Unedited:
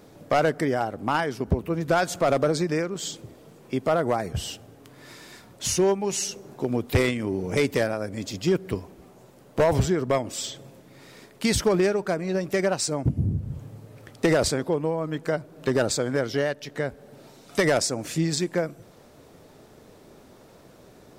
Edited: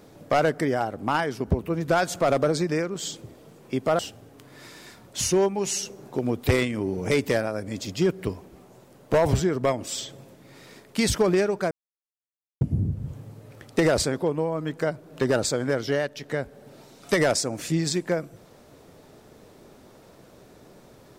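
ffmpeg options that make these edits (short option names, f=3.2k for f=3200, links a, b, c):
-filter_complex "[0:a]asplit=4[a][b][c][d];[a]atrim=end=3.992[e];[b]atrim=start=4.448:end=12.17,asetpts=PTS-STARTPTS,afade=t=out:st=7.718:d=0.004:c=hsin[f];[c]atrim=start=12.17:end=13.07,asetpts=PTS-STARTPTS,volume=0[g];[d]atrim=start=13.07,asetpts=PTS-STARTPTS,afade=t=in:d=0.004:c=hsin[h];[f][g][h]concat=n=3:v=0:a=1[i];[e][i]acrossfade=d=0.004:c1=hsin:c2=hsin"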